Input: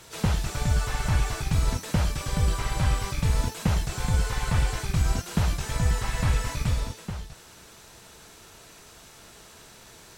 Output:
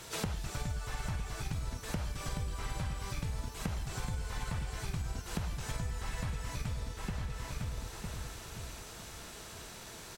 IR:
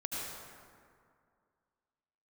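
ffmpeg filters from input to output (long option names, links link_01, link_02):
-filter_complex "[0:a]asplit=2[link_01][link_02];[link_02]adelay=955,lowpass=frequency=3900:poles=1,volume=-10dB,asplit=2[link_03][link_04];[link_04]adelay=955,lowpass=frequency=3900:poles=1,volume=0.27,asplit=2[link_05][link_06];[link_06]adelay=955,lowpass=frequency=3900:poles=1,volume=0.27[link_07];[link_01][link_03][link_05][link_07]amix=inputs=4:normalize=0,acompressor=threshold=-34dB:ratio=12,volume=1dB"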